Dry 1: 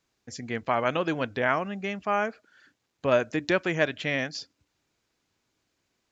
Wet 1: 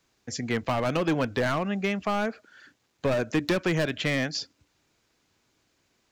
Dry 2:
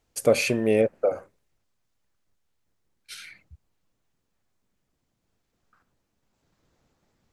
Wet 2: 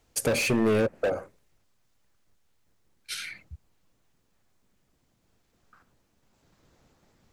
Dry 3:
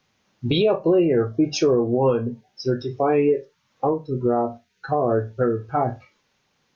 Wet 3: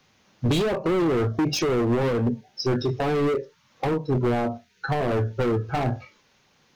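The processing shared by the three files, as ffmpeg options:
-filter_complex "[0:a]volume=24dB,asoftclip=hard,volume=-24dB,acrossover=split=330[a][b];[b]acompressor=threshold=-32dB:ratio=3[c];[a][c]amix=inputs=2:normalize=0,volume=6dB"

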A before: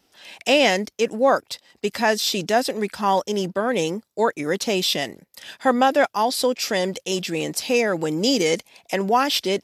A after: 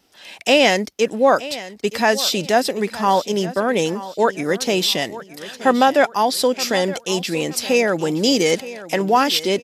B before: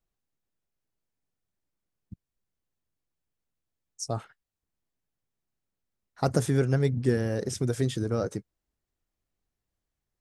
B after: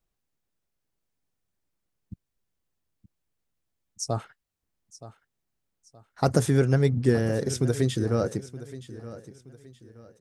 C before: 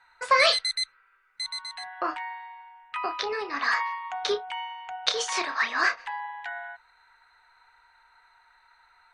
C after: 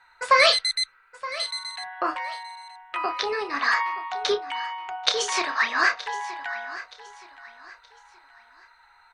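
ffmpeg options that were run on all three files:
-af "aecho=1:1:922|1844|2766:0.158|0.0539|0.0183,volume=3dB"

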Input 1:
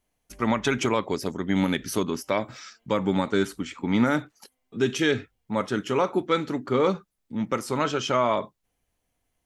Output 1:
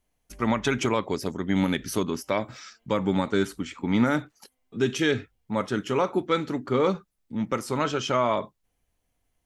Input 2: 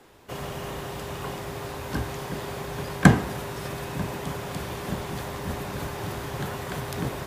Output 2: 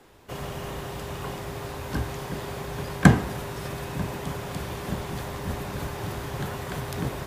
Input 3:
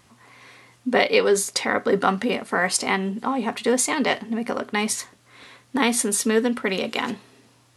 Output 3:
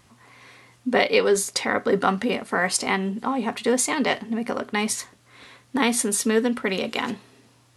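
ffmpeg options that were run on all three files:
-af "lowshelf=f=88:g=5.5,volume=-1dB"

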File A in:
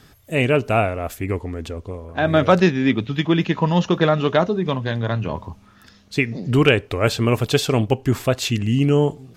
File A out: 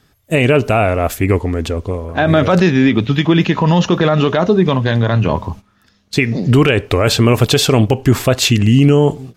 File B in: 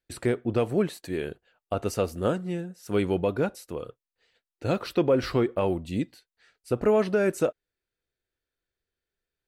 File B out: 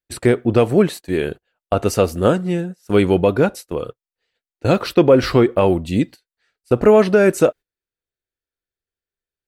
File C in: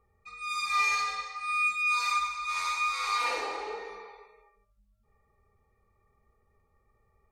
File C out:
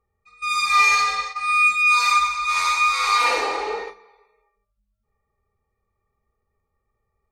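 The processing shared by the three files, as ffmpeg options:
-af "agate=range=-16dB:threshold=-40dB:ratio=16:detection=peak,alimiter=level_in=12dB:limit=-1dB:release=50:level=0:latency=1,volume=-1.5dB"

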